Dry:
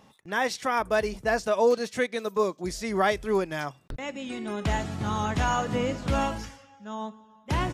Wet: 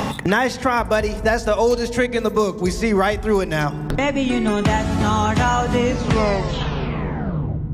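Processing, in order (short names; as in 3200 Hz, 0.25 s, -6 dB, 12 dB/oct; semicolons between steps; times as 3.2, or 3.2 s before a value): tape stop at the end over 1.94 s; on a send at -17.5 dB: RIAA curve playback + reverb RT60 1.8 s, pre-delay 3 ms; on the sum: three-band squash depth 100%; gain +7 dB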